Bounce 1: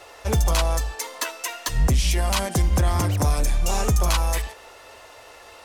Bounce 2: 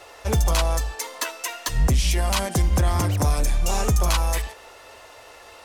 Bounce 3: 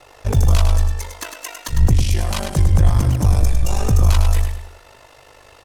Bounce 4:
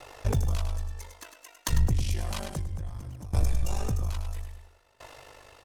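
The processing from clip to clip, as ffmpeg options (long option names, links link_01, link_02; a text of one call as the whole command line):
ffmpeg -i in.wav -af anull out.wav
ffmpeg -i in.wav -filter_complex "[0:a]lowshelf=frequency=210:gain=10,aeval=exprs='val(0)*sin(2*PI*25*n/s)':channel_layout=same,asplit=2[link_01][link_02];[link_02]aecho=0:1:103|206|309|412:0.447|0.156|0.0547|0.0192[link_03];[link_01][link_03]amix=inputs=2:normalize=0" out.wav
ffmpeg -i in.wav -af "acompressor=threshold=-19dB:ratio=3,aeval=exprs='val(0)*pow(10,-21*if(lt(mod(0.6*n/s,1),2*abs(0.6)/1000),1-mod(0.6*n/s,1)/(2*abs(0.6)/1000),(mod(0.6*n/s,1)-2*abs(0.6)/1000)/(1-2*abs(0.6)/1000))/20)':channel_layout=same" out.wav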